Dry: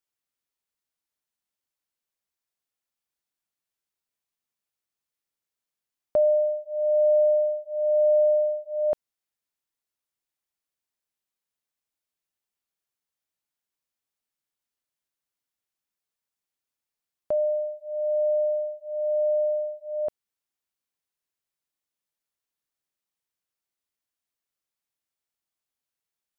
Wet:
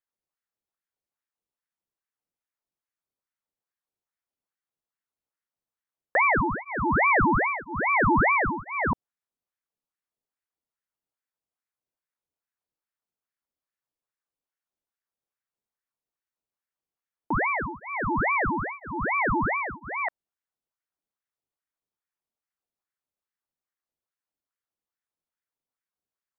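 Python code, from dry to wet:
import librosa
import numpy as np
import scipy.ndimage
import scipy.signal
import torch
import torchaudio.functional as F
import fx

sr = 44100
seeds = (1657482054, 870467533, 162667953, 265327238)

y = fx.tilt_shelf(x, sr, db=8.0, hz=770.0)
y = fx.ring_lfo(y, sr, carrier_hz=1000.0, swing_pct=75, hz=2.4)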